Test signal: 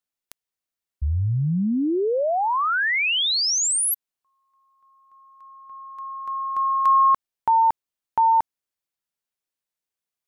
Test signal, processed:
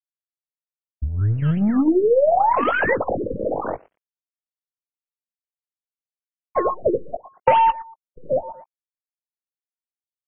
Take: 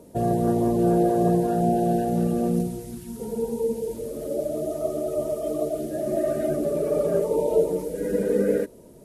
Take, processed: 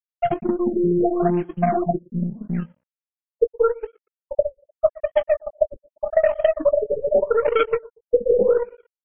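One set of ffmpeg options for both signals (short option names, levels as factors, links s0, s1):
-filter_complex "[0:a]afftfilt=real='re*gte(hypot(re,im),0.631)':imag='im*gte(hypot(re,im),0.631)':win_size=1024:overlap=0.75,asplit=2[s0][s1];[s1]acrusher=samples=21:mix=1:aa=0.000001:lfo=1:lforange=21:lforate=3.5,volume=0.668[s2];[s0][s2]amix=inputs=2:normalize=0,equalizer=f=550:t=o:w=1.5:g=15,asplit=2[s3][s4];[s4]adelay=117,lowpass=f=3300:p=1,volume=0.0794,asplit=2[s5][s6];[s6]adelay=117,lowpass=f=3300:p=1,volume=0.35[s7];[s5][s7]amix=inputs=2:normalize=0[s8];[s3][s8]amix=inputs=2:normalize=0,asoftclip=type=hard:threshold=0.447,asplit=2[s9][s10];[s10]adelay=19,volume=0.355[s11];[s9][s11]amix=inputs=2:normalize=0,aresample=32000,aresample=44100,adynamicequalizer=threshold=0.0398:dfrequency=400:dqfactor=3.6:tfrequency=400:tqfactor=3.6:attack=5:release=100:ratio=0.438:range=3.5:mode=cutabove:tftype=bell,acompressor=threshold=0.251:ratio=12:attack=21:release=368:knee=6:detection=peak,aeval=exprs='sgn(val(0))*max(abs(val(0))-0.00422,0)':c=same,aeval=exprs='0.447*(cos(1*acos(clip(val(0)/0.447,-1,1)))-cos(1*PI/2))+0.0708*(cos(3*acos(clip(val(0)/0.447,-1,1)))-cos(3*PI/2))+0.0112*(cos(8*acos(clip(val(0)/0.447,-1,1)))-cos(8*PI/2))':c=same,afftfilt=real='re*lt(b*sr/1024,550*pow(3400/550,0.5+0.5*sin(2*PI*0.82*pts/sr)))':imag='im*lt(b*sr/1024,550*pow(3400/550,0.5+0.5*sin(2*PI*0.82*pts/sr)))':win_size=1024:overlap=0.75,volume=1.26"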